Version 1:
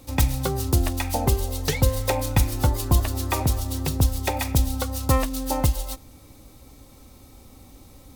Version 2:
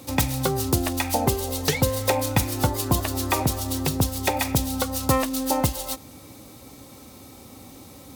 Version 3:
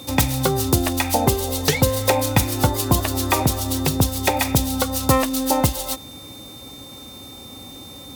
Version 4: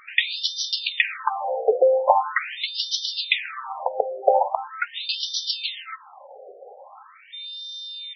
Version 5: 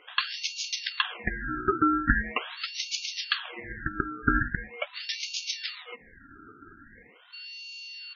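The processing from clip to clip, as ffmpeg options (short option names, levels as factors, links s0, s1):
-filter_complex "[0:a]highpass=120,asplit=2[s0][s1];[s1]acompressor=threshold=0.0251:ratio=6,volume=1.06[s2];[s0][s2]amix=inputs=2:normalize=0"
-af "aeval=exprs='val(0)+0.00631*sin(2*PI*3600*n/s)':c=same,volume=1.58"
-af "afftfilt=real='re*between(b*sr/1024,540*pow(4300/540,0.5+0.5*sin(2*PI*0.42*pts/sr))/1.41,540*pow(4300/540,0.5+0.5*sin(2*PI*0.42*pts/sr))*1.41)':imag='im*between(b*sr/1024,540*pow(4300/540,0.5+0.5*sin(2*PI*0.42*pts/sr))/1.41,540*pow(4300/540,0.5+0.5*sin(2*PI*0.42*pts/sr))*1.41)':win_size=1024:overlap=0.75,volume=2.24"
-af "aeval=exprs='val(0)*sin(2*PI*830*n/s)':c=same,volume=0.668"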